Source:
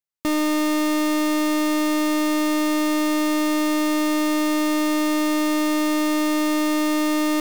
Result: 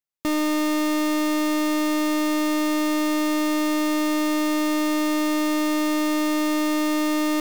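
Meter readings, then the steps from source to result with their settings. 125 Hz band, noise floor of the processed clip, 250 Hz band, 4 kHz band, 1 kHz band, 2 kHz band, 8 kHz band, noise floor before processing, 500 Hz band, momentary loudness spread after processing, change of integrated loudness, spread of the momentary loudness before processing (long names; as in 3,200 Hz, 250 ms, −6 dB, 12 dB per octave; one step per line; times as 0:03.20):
can't be measured, −22 dBFS, −1.5 dB, −1.5 dB, −1.5 dB, −1.5 dB, −2.0 dB, −20 dBFS, −1.5 dB, 0 LU, −1.5 dB, 0 LU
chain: parametric band 9,200 Hz −2.5 dB 0.2 octaves
level −1.5 dB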